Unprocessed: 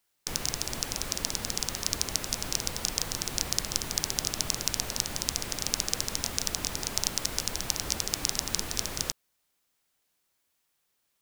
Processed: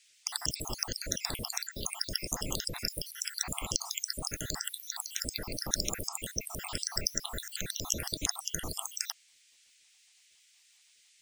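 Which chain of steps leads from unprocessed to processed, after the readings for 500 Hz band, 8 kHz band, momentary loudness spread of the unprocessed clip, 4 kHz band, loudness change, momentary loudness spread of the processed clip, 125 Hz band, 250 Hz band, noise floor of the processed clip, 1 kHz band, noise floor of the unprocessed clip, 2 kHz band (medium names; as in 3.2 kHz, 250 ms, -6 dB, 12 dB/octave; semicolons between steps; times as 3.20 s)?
-3.5 dB, -4.5 dB, 3 LU, -4.5 dB, -4.5 dB, 5 LU, -3.0 dB, -3.0 dB, -65 dBFS, -4.5 dB, -76 dBFS, -4.0 dB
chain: random holes in the spectrogram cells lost 77%; band noise 2–8.8 kHz -67 dBFS; trim +2.5 dB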